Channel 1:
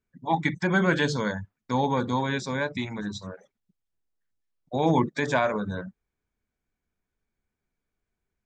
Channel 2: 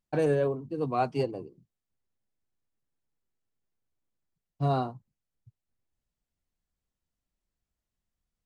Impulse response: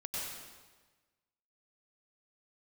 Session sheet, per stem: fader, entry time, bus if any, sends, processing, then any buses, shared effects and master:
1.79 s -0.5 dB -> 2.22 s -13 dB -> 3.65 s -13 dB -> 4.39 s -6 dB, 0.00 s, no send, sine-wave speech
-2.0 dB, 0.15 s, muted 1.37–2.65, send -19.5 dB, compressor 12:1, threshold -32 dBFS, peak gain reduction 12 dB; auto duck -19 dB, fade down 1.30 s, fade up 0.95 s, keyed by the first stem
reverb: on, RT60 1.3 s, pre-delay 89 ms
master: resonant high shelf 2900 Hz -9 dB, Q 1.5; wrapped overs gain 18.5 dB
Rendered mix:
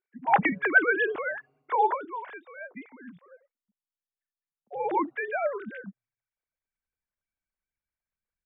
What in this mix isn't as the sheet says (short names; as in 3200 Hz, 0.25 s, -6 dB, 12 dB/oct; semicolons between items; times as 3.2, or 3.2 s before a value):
stem 2 -2.0 dB -> -12.0 dB; master: missing wrapped overs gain 18.5 dB